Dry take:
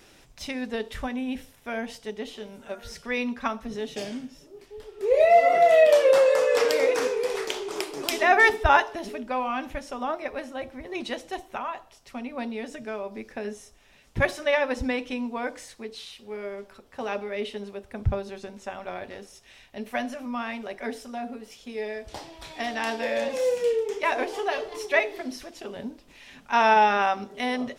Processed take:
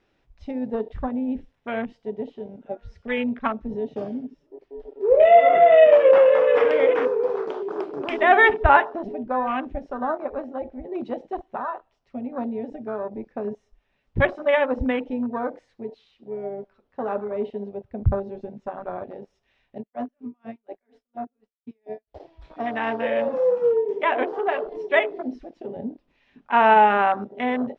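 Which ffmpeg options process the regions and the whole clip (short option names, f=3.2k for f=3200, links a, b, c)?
-filter_complex "[0:a]asettb=1/sr,asplit=3[a][b][c];[a]atrim=end=19.784[d];[b]atrim=start=19.78:end=22.2,asetpts=PTS-STARTPTS,afade=t=in:d=0.004:c=qsin,afade=t=out:st=2.416:d=0.004:c=qsin,agate=range=-33dB:threshold=-36dB:ratio=3:release=100:detection=peak,aeval=exprs='val(0)*pow(10,-32*(0.5-0.5*cos(2*PI*4.2*n/s))/20)':c=same[e];[c]atrim=start=22.196[f];[d][e]acrossfade=d=0.004:c1=hsin:c2=qsin[g];[g][f]acrossfade=d=0.004:c1=qsin:c2=hsin,aemphasis=mode=reproduction:type=75kf,afwtdn=0.0178,lowpass=4.9k,volume=4.5dB"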